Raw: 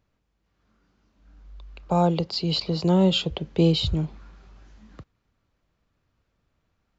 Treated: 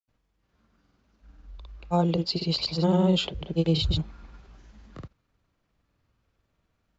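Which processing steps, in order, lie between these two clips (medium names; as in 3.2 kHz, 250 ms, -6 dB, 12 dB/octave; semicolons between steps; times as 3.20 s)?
in parallel at +1 dB: peak limiter -17.5 dBFS, peak gain reduction 9 dB; on the sum: granulator, pitch spread up and down by 0 st; trim -5.5 dB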